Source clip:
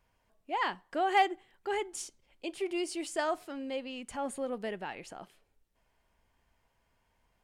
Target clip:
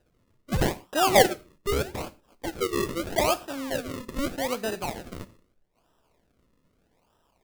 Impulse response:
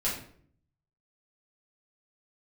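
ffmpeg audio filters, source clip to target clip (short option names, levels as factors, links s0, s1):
-filter_complex "[0:a]lowshelf=f=210:g=-8.5,acrusher=samples=39:mix=1:aa=0.000001:lfo=1:lforange=39:lforate=0.8,asplit=2[s0][s1];[1:a]atrim=start_sample=2205,atrim=end_sample=6174,highshelf=f=5000:g=11[s2];[s1][s2]afir=irnorm=-1:irlink=0,volume=0.0794[s3];[s0][s3]amix=inputs=2:normalize=0,volume=2.37"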